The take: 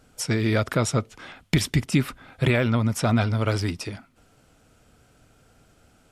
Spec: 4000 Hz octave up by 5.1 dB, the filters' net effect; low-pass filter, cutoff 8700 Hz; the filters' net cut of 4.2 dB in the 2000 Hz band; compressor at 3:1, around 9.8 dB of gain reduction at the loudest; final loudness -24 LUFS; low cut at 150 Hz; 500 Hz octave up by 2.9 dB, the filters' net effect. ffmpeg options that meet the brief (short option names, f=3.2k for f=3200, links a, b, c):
-af "highpass=150,lowpass=8.7k,equalizer=f=500:t=o:g=4,equalizer=f=2k:t=o:g=-8,equalizer=f=4k:t=o:g=9,acompressor=threshold=-30dB:ratio=3,volume=9dB"